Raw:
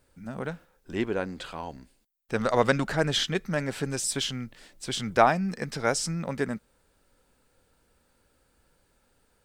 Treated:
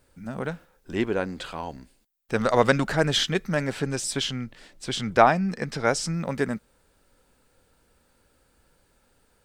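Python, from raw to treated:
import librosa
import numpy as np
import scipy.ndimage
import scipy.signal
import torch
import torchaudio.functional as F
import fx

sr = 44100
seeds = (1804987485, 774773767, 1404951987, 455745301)

y = fx.high_shelf(x, sr, hz=8400.0, db=-9.0, at=(3.72, 6.14))
y = F.gain(torch.from_numpy(y), 3.0).numpy()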